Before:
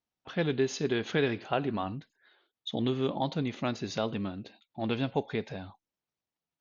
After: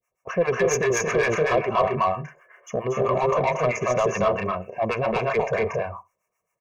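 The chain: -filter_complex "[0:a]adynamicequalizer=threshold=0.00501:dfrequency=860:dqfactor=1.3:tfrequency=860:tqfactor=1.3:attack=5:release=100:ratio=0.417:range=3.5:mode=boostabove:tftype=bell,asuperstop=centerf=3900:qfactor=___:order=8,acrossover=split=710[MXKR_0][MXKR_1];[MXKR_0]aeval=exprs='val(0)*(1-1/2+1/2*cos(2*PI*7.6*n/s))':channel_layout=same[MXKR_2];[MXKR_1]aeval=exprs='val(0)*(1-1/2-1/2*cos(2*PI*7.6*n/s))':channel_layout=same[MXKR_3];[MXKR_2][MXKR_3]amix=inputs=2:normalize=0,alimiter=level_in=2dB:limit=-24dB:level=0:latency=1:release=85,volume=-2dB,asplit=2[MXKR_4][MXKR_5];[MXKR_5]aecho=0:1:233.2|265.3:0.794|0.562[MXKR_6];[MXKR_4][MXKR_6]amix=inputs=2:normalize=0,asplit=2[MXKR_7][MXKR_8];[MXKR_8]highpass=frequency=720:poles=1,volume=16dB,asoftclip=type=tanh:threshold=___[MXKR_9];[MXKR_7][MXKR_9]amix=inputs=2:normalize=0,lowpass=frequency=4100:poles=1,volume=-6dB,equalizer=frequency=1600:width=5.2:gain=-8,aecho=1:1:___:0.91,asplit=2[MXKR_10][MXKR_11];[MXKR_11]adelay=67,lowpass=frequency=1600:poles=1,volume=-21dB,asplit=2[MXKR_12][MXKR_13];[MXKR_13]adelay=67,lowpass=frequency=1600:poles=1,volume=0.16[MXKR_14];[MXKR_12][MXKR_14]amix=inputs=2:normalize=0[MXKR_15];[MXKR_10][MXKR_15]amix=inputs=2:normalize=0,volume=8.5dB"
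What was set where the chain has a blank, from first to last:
1.2, -21dB, 1.8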